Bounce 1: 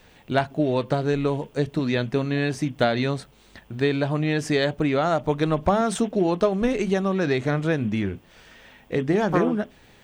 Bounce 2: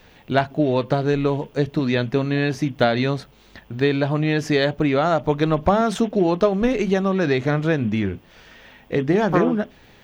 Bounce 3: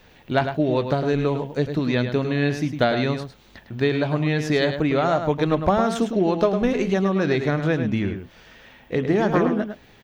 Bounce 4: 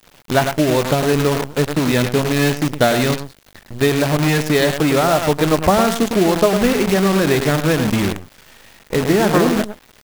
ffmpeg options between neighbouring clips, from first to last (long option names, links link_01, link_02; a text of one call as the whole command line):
ffmpeg -i in.wav -af "equalizer=frequency=8500:width_type=o:width=0.37:gain=-13,volume=3dB" out.wav
ffmpeg -i in.wav -filter_complex "[0:a]asplit=2[link_01][link_02];[link_02]adelay=105,volume=-8dB,highshelf=frequency=4000:gain=-2.36[link_03];[link_01][link_03]amix=inputs=2:normalize=0,volume=-2dB" out.wav
ffmpeg -i in.wav -af "acrusher=bits=5:dc=4:mix=0:aa=0.000001,volume=5dB" out.wav